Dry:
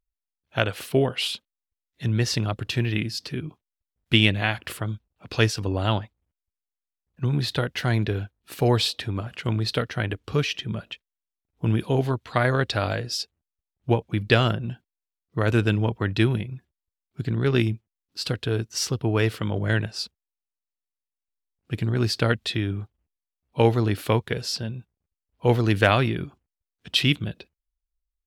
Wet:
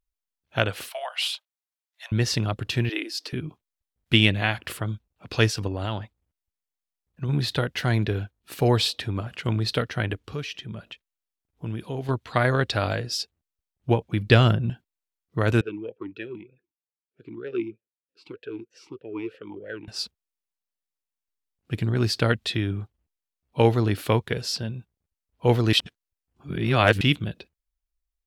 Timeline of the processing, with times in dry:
0:00.89–0:02.12: Butterworth high-pass 610 Hz 72 dB per octave
0:02.89–0:03.33: Butterworth high-pass 270 Hz 96 dB per octave
0:05.67–0:07.29: downward compressor 5 to 1, threshold −24 dBFS
0:10.27–0:12.09: downward compressor 1.5 to 1, threshold −43 dBFS
0:14.30–0:14.70: low-shelf EQ 200 Hz +7 dB
0:15.61–0:19.88: formant filter swept between two vowels e-u 3.2 Hz
0:25.73–0:27.01: reverse

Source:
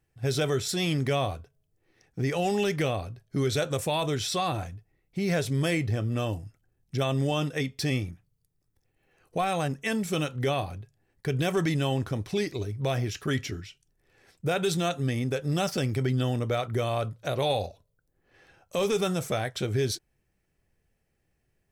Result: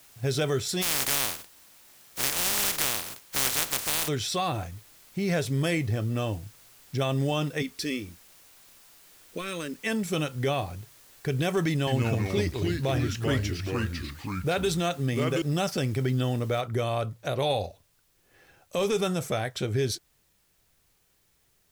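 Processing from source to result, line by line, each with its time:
0:00.81–0:04.07: compressing power law on the bin magnitudes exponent 0.1
0:07.62–0:09.84: phaser with its sweep stopped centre 310 Hz, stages 4
0:11.70–0:15.42: delay with pitch and tempo change per echo 171 ms, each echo −3 semitones, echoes 2
0:16.61: noise floor change −55 dB −69 dB

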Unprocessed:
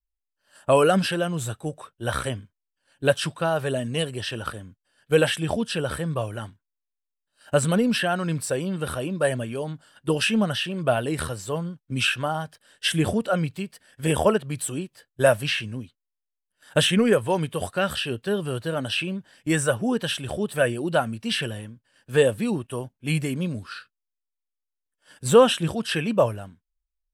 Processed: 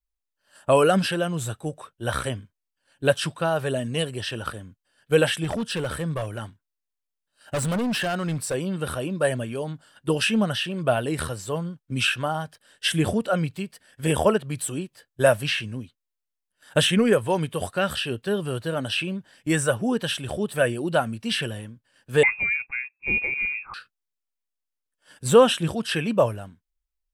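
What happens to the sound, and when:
0:05.44–0:08.54: hard clipping −22.5 dBFS
0:22.23–0:23.74: voice inversion scrambler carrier 2,600 Hz

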